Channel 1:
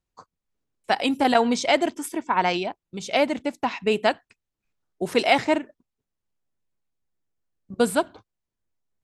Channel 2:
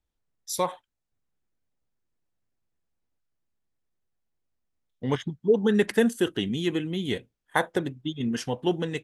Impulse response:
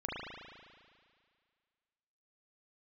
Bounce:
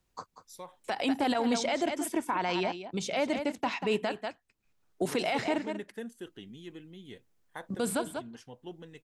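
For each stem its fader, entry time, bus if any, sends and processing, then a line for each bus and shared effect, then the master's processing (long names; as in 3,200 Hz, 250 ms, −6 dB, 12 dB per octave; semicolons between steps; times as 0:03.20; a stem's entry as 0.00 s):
−3.5 dB, 0.00 s, no send, echo send −12 dB, multiband upward and downward compressor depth 40%
−19.0 dB, 0.00 s, no send, no echo send, no processing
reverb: not used
echo: single-tap delay 189 ms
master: brickwall limiter −19 dBFS, peak gain reduction 11 dB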